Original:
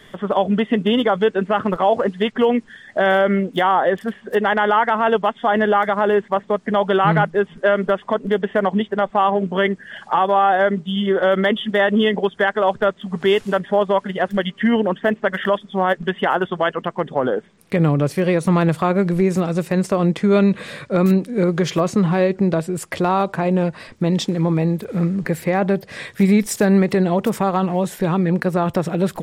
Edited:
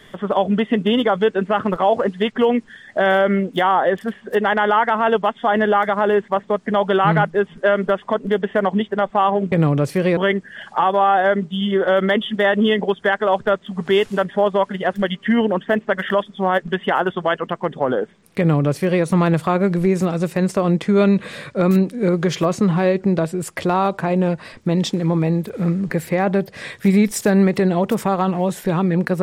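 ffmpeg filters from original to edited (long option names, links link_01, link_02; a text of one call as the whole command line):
ffmpeg -i in.wav -filter_complex "[0:a]asplit=3[link_01][link_02][link_03];[link_01]atrim=end=9.522[link_04];[link_02]atrim=start=17.738:end=18.392[link_05];[link_03]atrim=start=9.518[link_06];[link_04][link_05]acrossfade=duration=0.004:curve1=hsin:curve2=hsin[link_07];[link_07][link_06]acrossfade=duration=0.004:curve1=hsin:curve2=hsin" out.wav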